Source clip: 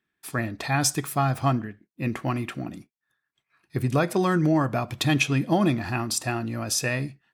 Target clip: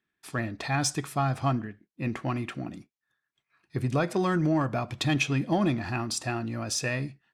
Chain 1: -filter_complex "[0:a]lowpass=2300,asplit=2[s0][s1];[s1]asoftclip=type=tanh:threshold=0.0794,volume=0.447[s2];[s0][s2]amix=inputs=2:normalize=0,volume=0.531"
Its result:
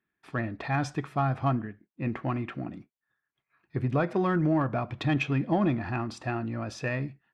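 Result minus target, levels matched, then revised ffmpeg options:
8 kHz band -16.5 dB
-filter_complex "[0:a]lowpass=8100,asplit=2[s0][s1];[s1]asoftclip=type=tanh:threshold=0.0794,volume=0.447[s2];[s0][s2]amix=inputs=2:normalize=0,volume=0.531"

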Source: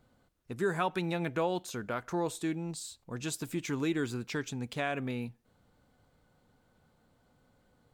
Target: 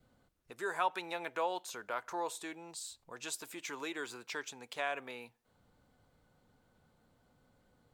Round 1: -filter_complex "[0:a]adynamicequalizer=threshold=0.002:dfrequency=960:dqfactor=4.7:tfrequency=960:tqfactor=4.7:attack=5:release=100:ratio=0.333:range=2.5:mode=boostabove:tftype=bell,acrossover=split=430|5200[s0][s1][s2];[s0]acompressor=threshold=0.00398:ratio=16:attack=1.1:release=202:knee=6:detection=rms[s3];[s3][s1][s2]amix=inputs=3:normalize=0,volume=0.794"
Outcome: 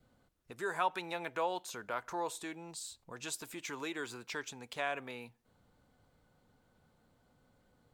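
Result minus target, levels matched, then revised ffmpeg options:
compression: peak gain reduction -8.5 dB
-filter_complex "[0:a]adynamicequalizer=threshold=0.002:dfrequency=960:dqfactor=4.7:tfrequency=960:tqfactor=4.7:attack=5:release=100:ratio=0.333:range=2.5:mode=boostabove:tftype=bell,acrossover=split=430|5200[s0][s1][s2];[s0]acompressor=threshold=0.00141:ratio=16:attack=1.1:release=202:knee=6:detection=rms[s3];[s3][s1][s2]amix=inputs=3:normalize=0,volume=0.794"

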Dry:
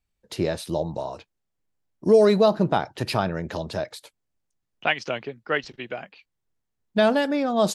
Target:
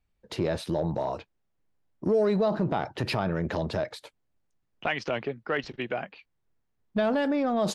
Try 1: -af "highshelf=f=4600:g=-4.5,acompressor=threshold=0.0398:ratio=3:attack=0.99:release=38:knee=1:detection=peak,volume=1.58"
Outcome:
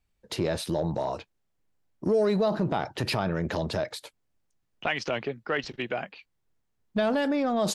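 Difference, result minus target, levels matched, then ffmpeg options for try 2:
8 kHz band +5.5 dB
-af "highshelf=f=4600:g=-14,acompressor=threshold=0.0398:ratio=3:attack=0.99:release=38:knee=1:detection=peak,volume=1.58"

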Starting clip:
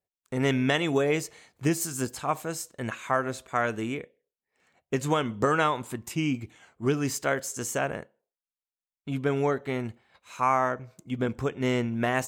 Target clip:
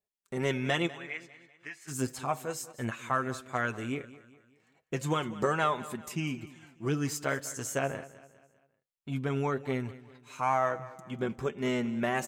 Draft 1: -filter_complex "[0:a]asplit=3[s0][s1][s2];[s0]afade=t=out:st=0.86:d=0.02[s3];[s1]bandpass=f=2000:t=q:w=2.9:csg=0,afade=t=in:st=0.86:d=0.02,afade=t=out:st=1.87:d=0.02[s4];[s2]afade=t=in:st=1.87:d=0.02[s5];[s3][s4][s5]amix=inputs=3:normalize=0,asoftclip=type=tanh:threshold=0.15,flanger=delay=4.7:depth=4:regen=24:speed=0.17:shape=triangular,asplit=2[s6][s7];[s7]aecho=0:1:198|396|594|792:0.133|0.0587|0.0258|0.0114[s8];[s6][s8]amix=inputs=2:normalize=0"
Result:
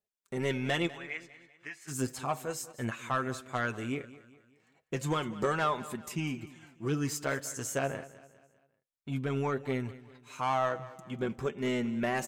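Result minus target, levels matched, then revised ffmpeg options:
saturation: distortion +17 dB
-filter_complex "[0:a]asplit=3[s0][s1][s2];[s0]afade=t=out:st=0.86:d=0.02[s3];[s1]bandpass=f=2000:t=q:w=2.9:csg=0,afade=t=in:st=0.86:d=0.02,afade=t=out:st=1.87:d=0.02[s4];[s2]afade=t=in:st=1.87:d=0.02[s5];[s3][s4][s5]amix=inputs=3:normalize=0,asoftclip=type=tanh:threshold=0.501,flanger=delay=4.7:depth=4:regen=24:speed=0.17:shape=triangular,asplit=2[s6][s7];[s7]aecho=0:1:198|396|594|792:0.133|0.0587|0.0258|0.0114[s8];[s6][s8]amix=inputs=2:normalize=0"

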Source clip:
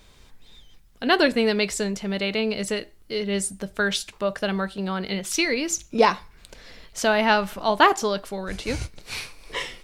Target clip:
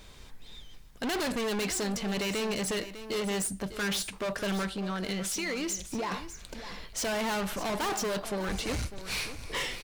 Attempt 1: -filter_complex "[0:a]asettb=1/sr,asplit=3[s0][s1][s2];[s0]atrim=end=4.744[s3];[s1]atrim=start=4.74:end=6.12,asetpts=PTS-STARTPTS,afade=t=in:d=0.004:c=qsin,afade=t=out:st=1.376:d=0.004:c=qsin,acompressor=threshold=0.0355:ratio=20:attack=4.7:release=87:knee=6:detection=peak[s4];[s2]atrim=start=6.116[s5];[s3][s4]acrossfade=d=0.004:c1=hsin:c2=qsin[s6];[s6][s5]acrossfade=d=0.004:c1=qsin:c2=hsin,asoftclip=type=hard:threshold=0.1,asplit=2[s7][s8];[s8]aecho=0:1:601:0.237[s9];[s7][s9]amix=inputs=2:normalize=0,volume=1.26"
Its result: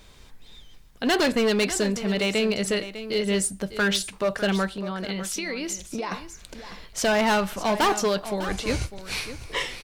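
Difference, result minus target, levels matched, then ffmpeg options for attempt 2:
hard clipper: distortion -6 dB
-filter_complex "[0:a]asettb=1/sr,asplit=3[s0][s1][s2];[s0]atrim=end=4.744[s3];[s1]atrim=start=4.74:end=6.12,asetpts=PTS-STARTPTS,afade=t=in:d=0.004:c=qsin,afade=t=out:st=1.376:d=0.004:c=qsin,acompressor=threshold=0.0355:ratio=20:attack=4.7:release=87:knee=6:detection=peak[s4];[s2]atrim=start=6.116[s5];[s3][s4]acrossfade=d=0.004:c1=hsin:c2=qsin[s6];[s6][s5]acrossfade=d=0.004:c1=qsin:c2=hsin,asoftclip=type=hard:threshold=0.0266,asplit=2[s7][s8];[s8]aecho=0:1:601:0.237[s9];[s7][s9]amix=inputs=2:normalize=0,volume=1.26"

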